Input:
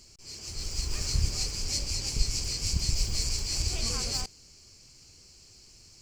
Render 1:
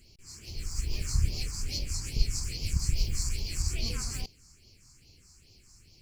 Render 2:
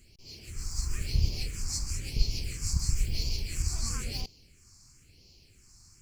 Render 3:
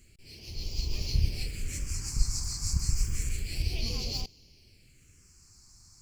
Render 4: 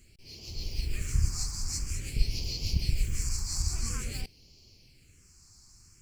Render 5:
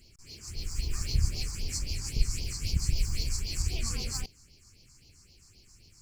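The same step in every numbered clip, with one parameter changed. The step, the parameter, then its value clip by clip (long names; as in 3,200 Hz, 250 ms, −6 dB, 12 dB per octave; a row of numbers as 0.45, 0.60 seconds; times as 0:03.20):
all-pass phaser, speed: 2.4, 0.99, 0.3, 0.49, 3.8 Hertz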